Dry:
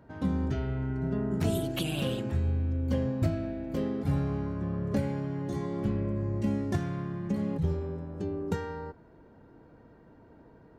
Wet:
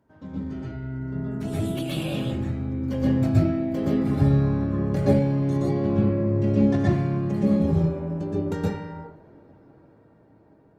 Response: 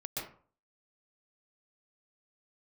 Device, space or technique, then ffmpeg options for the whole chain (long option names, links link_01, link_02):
far-field microphone of a smart speaker: -filter_complex "[0:a]asettb=1/sr,asplit=3[link_01][link_02][link_03];[link_01]atrim=end=5.574[link_04];[link_02]atrim=start=5.57:end=6.81,asetpts=PTS-STARTPTS,afade=type=in:duration=0.004:curve=qsin,afade=type=out:start_time=1.236:duration=0.004:curve=qsin,lowpass=5100[link_05];[link_03]atrim=start=6.806[link_06];[link_04][link_05]acrossfade=duration=0.004:curve1=hsin:curve2=qsin[link_07];[link_07][link_06]acrossfade=duration=0.004:curve1=qsin:curve2=hsin[link_08];[1:a]atrim=start_sample=2205[link_09];[link_08][link_09]afir=irnorm=-1:irlink=0,highpass=frequency=83:poles=1,dynaudnorm=framelen=500:gausssize=9:maxgain=12.5dB,volume=-4.5dB" -ar 48000 -c:a libopus -b:a 24k